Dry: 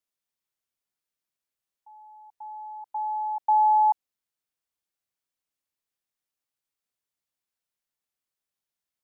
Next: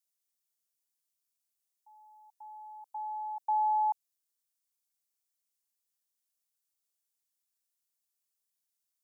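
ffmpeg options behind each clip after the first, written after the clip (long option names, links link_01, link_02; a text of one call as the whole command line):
ffmpeg -i in.wav -af "bass=frequency=250:gain=-5,treble=frequency=4000:gain=14,volume=-8.5dB" out.wav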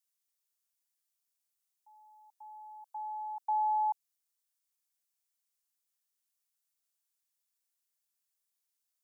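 ffmpeg -i in.wav -af "highpass=720" out.wav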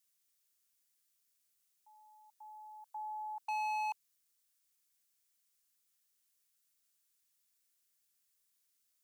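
ffmpeg -i in.wav -af "equalizer=frequency=800:width_type=o:width=0.8:gain=-9.5,aeval=exprs='0.0126*(abs(mod(val(0)/0.0126+3,4)-2)-1)':channel_layout=same,volume=6dB" out.wav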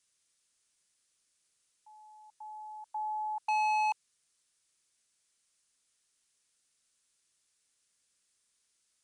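ffmpeg -i in.wav -af "aresample=22050,aresample=44100,volume=7dB" out.wav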